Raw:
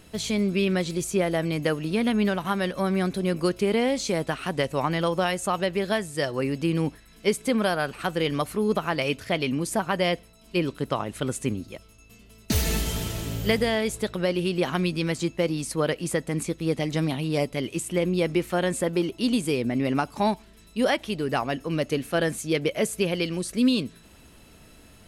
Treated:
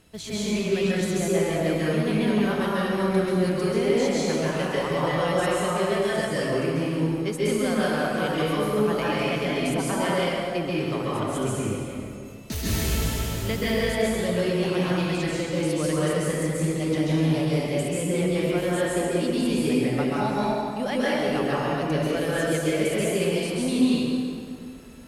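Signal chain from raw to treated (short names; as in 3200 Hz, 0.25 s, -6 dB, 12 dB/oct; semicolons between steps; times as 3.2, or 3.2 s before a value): added harmonics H 5 -23 dB, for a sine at -9.5 dBFS; plate-style reverb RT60 2.4 s, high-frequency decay 0.65×, pre-delay 0.12 s, DRR -8 dB; gain -9 dB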